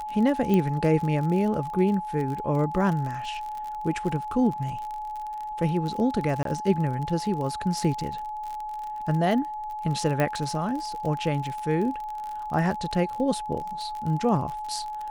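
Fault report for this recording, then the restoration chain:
crackle 41 per s -31 dBFS
whine 850 Hz -31 dBFS
0.54 s: pop -13 dBFS
6.43–6.45 s: dropout 23 ms
10.20 s: pop -12 dBFS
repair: de-click; band-stop 850 Hz, Q 30; interpolate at 6.43 s, 23 ms

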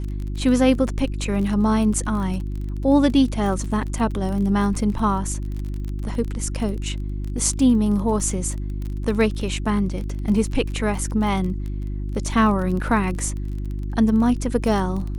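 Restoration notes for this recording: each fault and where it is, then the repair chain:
crackle 28 per s -28 dBFS
hum 50 Hz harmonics 7 -27 dBFS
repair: de-click; de-hum 50 Hz, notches 7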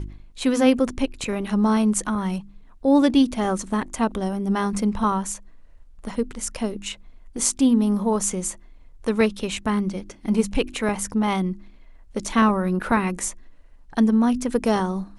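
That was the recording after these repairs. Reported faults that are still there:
nothing left

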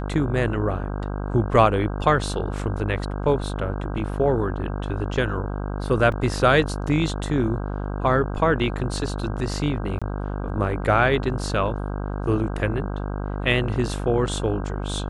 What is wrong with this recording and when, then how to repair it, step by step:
buzz 50 Hz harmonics 32 -28 dBFS
6.12 s: dropout 3.2 ms
9.99–10.02 s: dropout 26 ms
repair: de-hum 50 Hz, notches 32; interpolate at 6.12 s, 3.2 ms; interpolate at 9.99 s, 26 ms

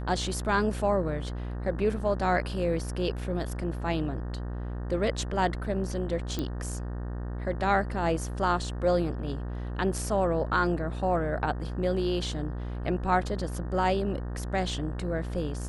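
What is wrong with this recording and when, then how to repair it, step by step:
buzz 60 Hz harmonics 31 -34 dBFS
6.39 s: pop -17 dBFS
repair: de-click; de-hum 60 Hz, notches 31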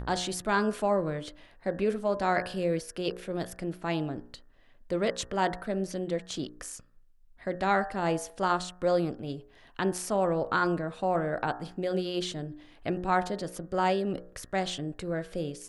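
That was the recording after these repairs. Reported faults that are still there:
6.39 s: pop

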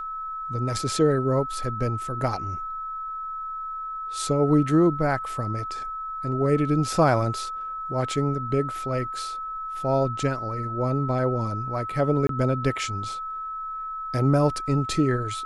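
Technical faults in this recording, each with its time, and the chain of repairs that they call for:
whine 1.3 kHz -30 dBFS
12.27–12.29 s: dropout 23 ms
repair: band-stop 1.3 kHz, Q 30; interpolate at 12.27 s, 23 ms

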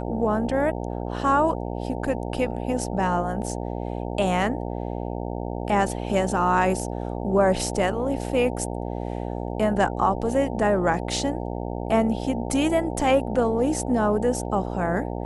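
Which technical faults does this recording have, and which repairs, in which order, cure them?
buzz 60 Hz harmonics 15 -30 dBFS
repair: de-hum 60 Hz, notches 15

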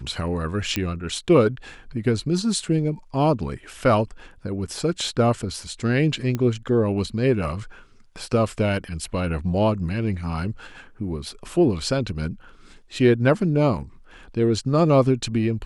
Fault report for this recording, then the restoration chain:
0.76 s: pop -9 dBFS
6.35 s: pop -13 dBFS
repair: de-click

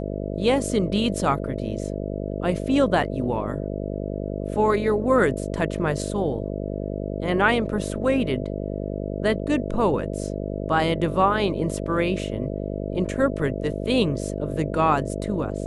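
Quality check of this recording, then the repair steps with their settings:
buzz 50 Hz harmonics 13 -29 dBFS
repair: de-hum 50 Hz, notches 13

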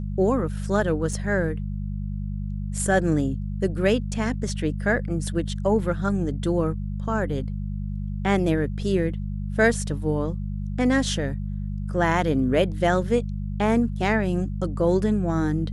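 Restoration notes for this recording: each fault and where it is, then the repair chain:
hum 50 Hz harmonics 4 -29 dBFS
1.13 s: dropout 3.4 ms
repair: de-hum 50 Hz, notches 4; interpolate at 1.13 s, 3.4 ms

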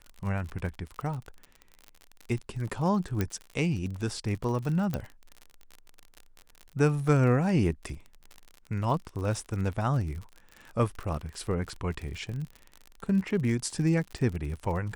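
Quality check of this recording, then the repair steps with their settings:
crackle 51 per s -35 dBFS
3.21 s: pop -14 dBFS
4.94 s: pop -17 dBFS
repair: de-click

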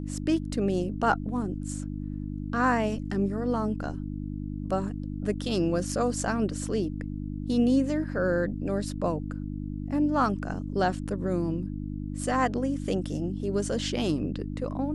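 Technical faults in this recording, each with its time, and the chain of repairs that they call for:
hum 50 Hz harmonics 6 -34 dBFS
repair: de-hum 50 Hz, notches 6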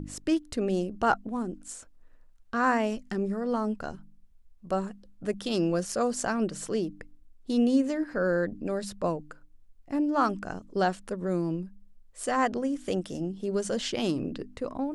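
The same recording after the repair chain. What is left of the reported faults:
nothing left

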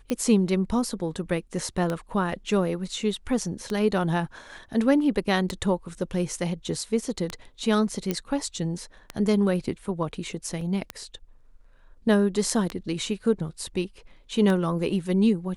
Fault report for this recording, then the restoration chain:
tick 33 1/3 rpm -14 dBFS
8.11 s: pop -12 dBFS
10.61 s: dropout 3 ms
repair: de-click; interpolate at 10.61 s, 3 ms

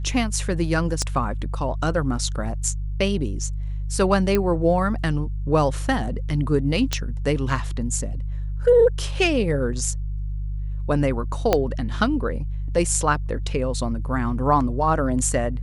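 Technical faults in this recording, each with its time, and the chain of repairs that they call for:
hum 50 Hz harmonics 3 -27 dBFS
1.02 s: pop -12 dBFS
4.35 s: pop -8 dBFS
6.93 s: pop -7 dBFS
11.53 s: pop -4 dBFS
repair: de-click; de-hum 50 Hz, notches 3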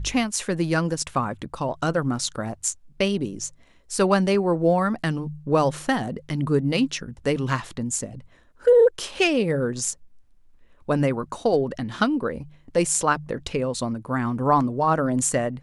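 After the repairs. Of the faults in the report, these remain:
1.02 s: pop
6.93 s: pop
11.53 s: pop

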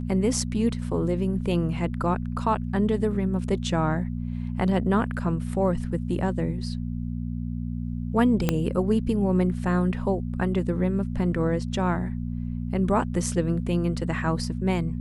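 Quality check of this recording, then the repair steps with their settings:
hum 60 Hz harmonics 4 -30 dBFS
8.49 s: pop -8 dBFS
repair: de-click; de-hum 60 Hz, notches 4

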